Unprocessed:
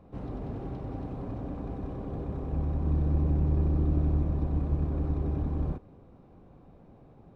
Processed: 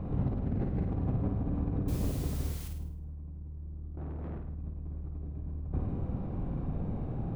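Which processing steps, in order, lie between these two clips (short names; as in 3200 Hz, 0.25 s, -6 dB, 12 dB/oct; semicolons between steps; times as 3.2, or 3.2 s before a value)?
0.45–0.89 median filter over 41 samples; tone controls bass +10 dB, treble -10 dB; negative-ratio compressor -35 dBFS, ratio -1; 1.88–2.68 requantised 8-bit, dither triangular; 3.97–4.38 overdrive pedal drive 35 dB, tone 1500 Hz, clips at -31.5 dBFS; flutter echo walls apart 8.9 m, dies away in 0.59 s; gain -2 dB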